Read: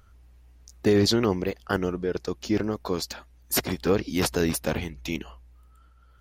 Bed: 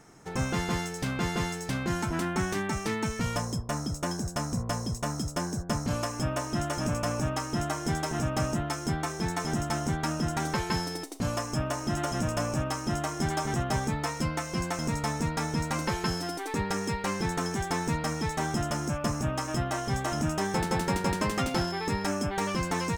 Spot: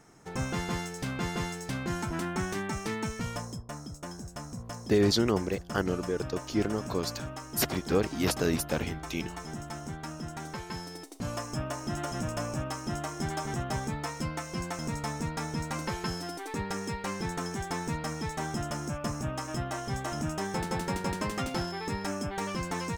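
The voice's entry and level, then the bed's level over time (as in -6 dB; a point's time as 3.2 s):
4.05 s, -3.5 dB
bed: 3.06 s -3 dB
3.78 s -9.5 dB
10.72 s -9.5 dB
11.39 s -4 dB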